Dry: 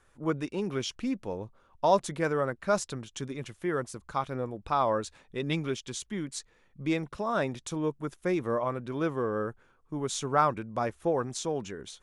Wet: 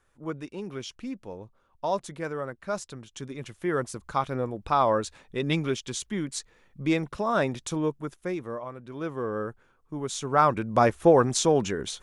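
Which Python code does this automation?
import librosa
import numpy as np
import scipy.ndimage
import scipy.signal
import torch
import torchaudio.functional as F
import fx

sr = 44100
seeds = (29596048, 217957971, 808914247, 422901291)

y = fx.gain(x, sr, db=fx.line((2.92, -4.5), (3.83, 4.0), (7.77, 4.0), (8.72, -8.0), (9.29, 0.0), (10.21, 0.0), (10.77, 10.0)))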